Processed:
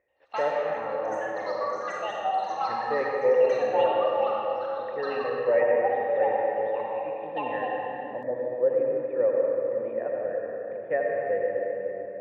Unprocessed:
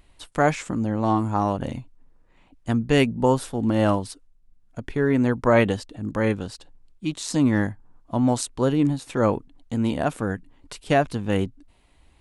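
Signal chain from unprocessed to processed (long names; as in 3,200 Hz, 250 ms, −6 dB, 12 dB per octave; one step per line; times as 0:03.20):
high-pass filter 80 Hz
reverb reduction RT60 1.7 s
formant resonators in series e
flat-topped bell 870 Hz +11 dB 2.8 octaves
convolution reverb RT60 4.3 s, pre-delay 74 ms, DRR −2.5 dB
delay with pitch and tempo change per echo 83 ms, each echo +7 semitones, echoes 3, each echo −6 dB
level −8 dB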